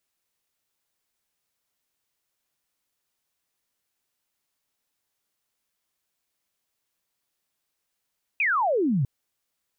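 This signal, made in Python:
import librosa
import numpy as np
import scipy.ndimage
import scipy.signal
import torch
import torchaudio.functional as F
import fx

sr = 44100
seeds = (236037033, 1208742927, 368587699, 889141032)

y = fx.laser_zap(sr, level_db=-20, start_hz=2600.0, end_hz=120.0, length_s=0.65, wave='sine')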